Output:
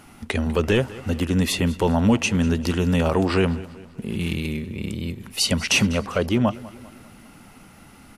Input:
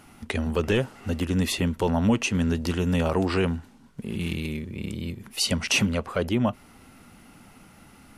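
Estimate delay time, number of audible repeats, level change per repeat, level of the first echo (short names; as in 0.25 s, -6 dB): 0.198 s, 3, -6.0 dB, -19.0 dB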